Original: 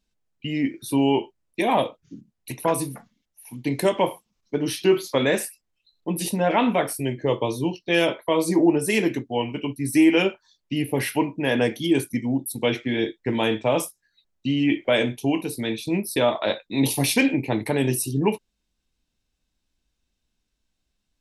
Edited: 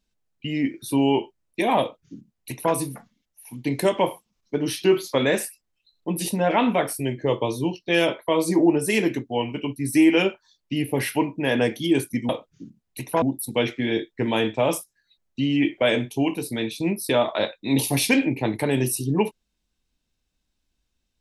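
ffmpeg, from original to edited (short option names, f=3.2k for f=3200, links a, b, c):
-filter_complex "[0:a]asplit=3[a][b][c];[a]atrim=end=12.292[d];[b]atrim=start=1.798:end=2.732[e];[c]atrim=start=12.288[f];[d][e]acrossfade=d=0.004:c1=hsin:c2=hsin[g];[g][f]acrossfade=d=0.004:c1=hsin:c2=hsin"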